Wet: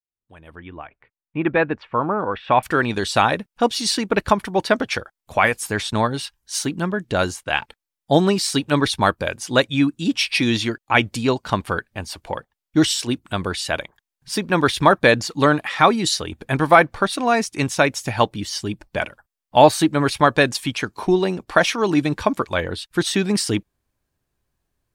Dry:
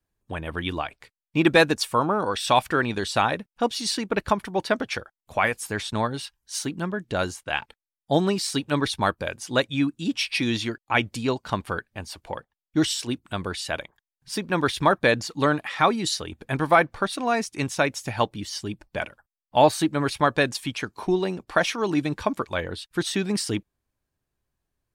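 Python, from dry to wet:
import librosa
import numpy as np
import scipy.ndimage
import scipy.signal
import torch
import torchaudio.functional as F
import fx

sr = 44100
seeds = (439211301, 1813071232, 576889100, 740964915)

y = fx.fade_in_head(x, sr, length_s=3.37)
y = fx.lowpass(y, sr, hz=2400.0, slope=24, at=(0.55, 2.63))
y = y * librosa.db_to_amplitude(5.5)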